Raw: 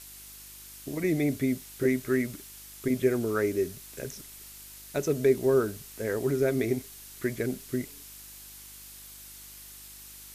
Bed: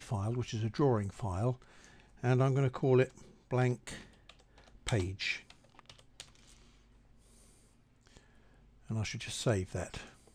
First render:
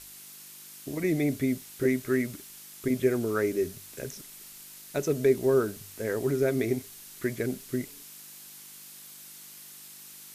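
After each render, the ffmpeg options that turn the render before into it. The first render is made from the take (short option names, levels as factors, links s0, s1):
-af "bandreject=f=50:t=h:w=4,bandreject=f=100:t=h:w=4"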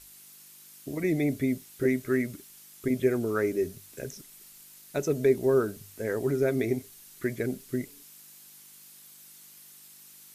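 -af "afftdn=nr=6:nf=-48"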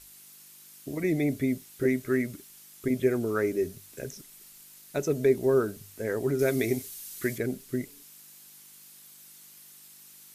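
-filter_complex "[0:a]asettb=1/sr,asplit=3[s0][s1][s2];[s0]atrim=end=6.394[s3];[s1]atrim=start=6.39:end=7.38,asetpts=PTS-STARTPTS,afade=t=in:d=0.004:c=qsin,afade=t=out:st=0.986:d=0.004:c=qsin,highshelf=f=2500:g=9.5[s4];[s2]atrim=start=7.376[s5];[s3][s4]acrossfade=d=0.004:c1=hsin:c2=qsin[s6];[s6][s5]acrossfade=d=0.004:c1=qsin:c2=hsin"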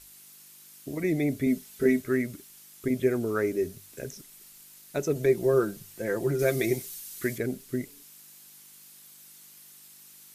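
-filter_complex "[0:a]asettb=1/sr,asplit=3[s0][s1][s2];[s0]atrim=end=1.464[s3];[s1]atrim=start=1.46:end=2.01,asetpts=PTS-STARTPTS,afade=t=in:d=0.004:c=qsin,afade=t=out:st=0.546:d=0.004:c=qsin,aecho=1:1:4.6:0.73,atrim=end_sample=24255[s4];[s2]atrim=start=2.006[s5];[s3][s4]acrossfade=d=0.004:c1=hsin:c2=qsin[s6];[s6][s5]acrossfade=d=0.004:c1=qsin:c2=hsin,asettb=1/sr,asplit=3[s7][s8][s9];[s7]atrim=end=5.154[s10];[s8]atrim=start=5.15:end=7,asetpts=PTS-STARTPTS,afade=t=in:d=0.004:c=qsin,afade=t=out:st=1.846:d=0.004:c=qsin,aecho=1:1:5.8:0.62,atrim=end_sample=81585[s11];[s9]atrim=start=6.996[s12];[s10][s11]acrossfade=d=0.004:c1=hsin:c2=qsin[s13];[s13][s12]acrossfade=d=0.004:c1=qsin:c2=hsin"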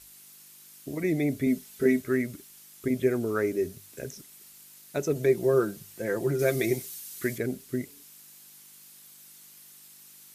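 -af "highpass=42"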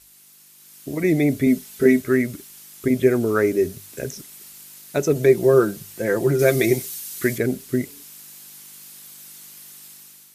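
-af "dynaudnorm=f=550:g=3:m=2.82"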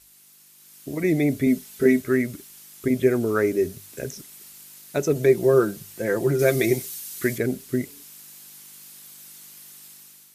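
-af "volume=0.75"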